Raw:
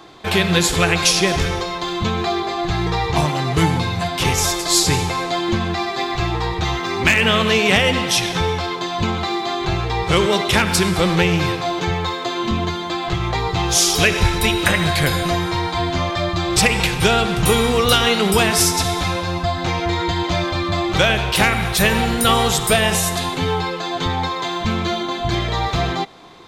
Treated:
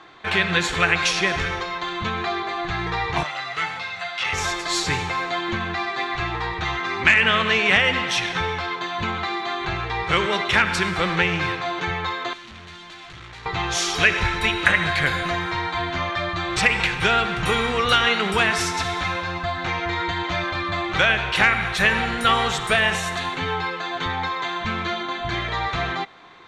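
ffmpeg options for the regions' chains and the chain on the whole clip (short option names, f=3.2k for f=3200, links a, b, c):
-filter_complex "[0:a]asettb=1/sr,asplit=3[a][b][c];[a]atrim=end=3.234[d];[b]atrim=start=3.23:end=4.33,asetpts=PTS-STARTPTS,afade=t=in:d=0.004:c=qsin,afade=t=out:st=1.096:d=0.004:c=qsin,highpass=f=1.4k:p=1,aecho=1:1:1.5:0.48,atrim=end_sample=48510,acrossover=split=6400[e][f];[f]acompressor=threshold=-45dB:ratio=4:attack=1:release=60[g];[e][g]amix=inputs=2:normalize=0[h];[c]atrim=start=4.326[i];[d][h]acrossfade=d=0.004:c1=hsin:c2=qsin[j];[j][i]acrossfade=d=0.004:c1=qsin:c2=hsin,asettb=1/sr,asplit=3[k][l][m];[k]atrim=end=12.334[n];[l]atrim=start=12.33:end=13.46,asetpts=PTS-STARTPTS,afade=t=in:d=0.004:c=qsin,afade=t=out:st=1.126:d=0.004:c=qsin,volume=27dB,asoftclip=hard,volume=-27dB,acrossover=split=200|3000[o][p][q];[p]acompressor=threshold=-40dB:ratio=4:attack=3.2:release=140:knee=2.83:detection=peak[r];[o][r][q]amix=inputs=3:normalize=0,bass=f=250:g=-4,treble=f=4k:g=-2[s];[m]atrim=start=13.456[t];[n][s]acrossfade=d=0.004:c1=hsin:c2=qsin[u];[u][t]acrossfade=d=0.004:c1=qsin:c2=hsin,lowpass=6.8k,equalizer=f=1.7k:w=0.78:g=11.5,bandreject=f=5k:w=14,volume=-9dB"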